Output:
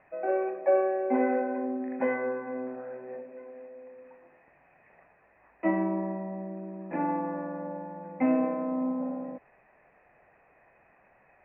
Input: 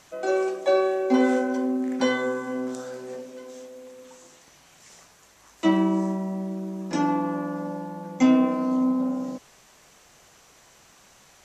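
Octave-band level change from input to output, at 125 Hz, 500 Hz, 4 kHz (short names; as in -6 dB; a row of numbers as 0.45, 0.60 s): -8.5 dB, -3.0 dB, under -30 dB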